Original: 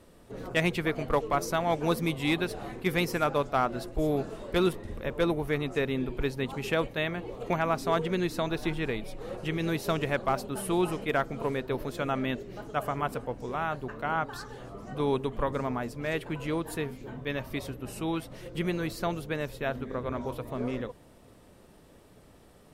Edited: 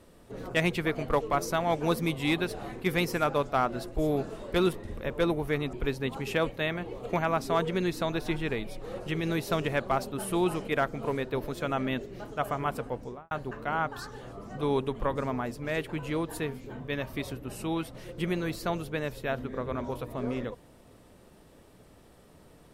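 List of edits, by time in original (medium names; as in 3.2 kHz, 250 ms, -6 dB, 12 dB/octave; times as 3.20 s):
5.73–6.10 s: delete
13.34–13.68 s: studio fade out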